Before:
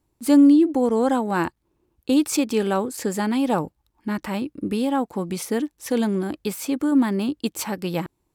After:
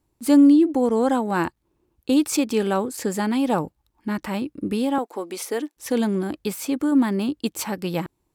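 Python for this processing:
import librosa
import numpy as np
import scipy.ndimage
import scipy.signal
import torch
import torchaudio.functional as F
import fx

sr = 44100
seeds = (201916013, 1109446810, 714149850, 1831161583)

y = fx.highpass(x, sr, hz=310.0, slope=24, at=(4.98, 5.77))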